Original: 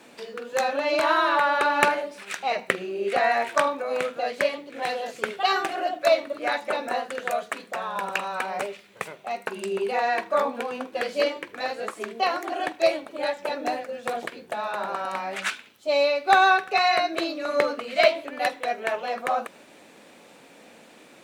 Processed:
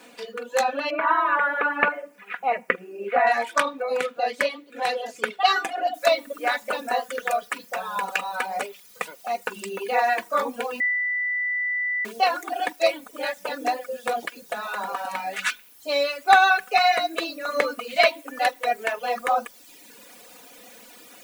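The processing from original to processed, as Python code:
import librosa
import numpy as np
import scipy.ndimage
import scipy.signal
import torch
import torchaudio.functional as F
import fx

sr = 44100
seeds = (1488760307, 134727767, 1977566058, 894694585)

y = fx.lowpass(x, sr, hz=2300.0, slope=24, at=(0.9, 3.27))
y = fx.noise_floor_step(y, sr, seeds[0], at_s=5.94, before_db=-67, after_db=-50, tilt_db=0.0)
y = fx.edit(y, sr, fx.bleep(start_s=10.8, length_s=1.25, hz=1980.0, db=-24.0), tone=tone)
y = fx.dereverb_blind(y, sr, rt60_s=1.0)
y = fx.low_shelf(y, sr, hz=280.0, db=-7.0)
y = y + 0.61 * np.pad(y, (int(4.1 * sr / 1000.0), 0))[:len(y)]
y = y * 10.0 ** (1.5 / 20.0)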